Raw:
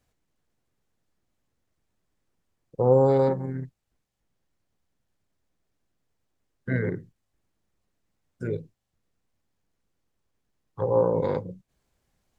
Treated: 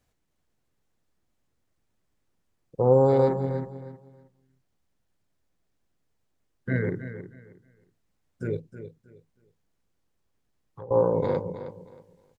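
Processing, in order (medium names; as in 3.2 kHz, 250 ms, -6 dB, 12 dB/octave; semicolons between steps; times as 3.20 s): 8.59–10.91 s: compression 2.5:1, threshold -46 dBFS, peak gain reduction 15.5 dB; on a send: feedback delay 315 ms, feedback 24%, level -11.5 dB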